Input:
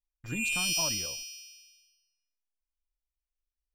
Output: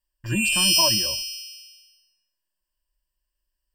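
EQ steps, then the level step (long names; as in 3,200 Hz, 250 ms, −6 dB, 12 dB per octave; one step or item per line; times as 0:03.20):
EQ curve with evenly spaced ripples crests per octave 1.3, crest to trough 15 dB
+7.0 dB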